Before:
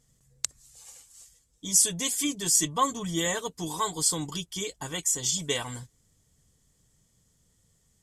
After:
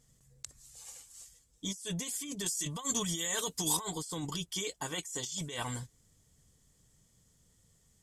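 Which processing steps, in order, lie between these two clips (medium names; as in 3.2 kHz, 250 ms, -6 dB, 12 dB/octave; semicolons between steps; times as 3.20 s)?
4.50–5.41 s: bass shelf 150 Hz -10 dB; compressor with a negative ratio -34 dBFS, ratio -1; 2.46–3.77 s: treble shelf 2.4 kHz +11.5 dB; trim -5 dB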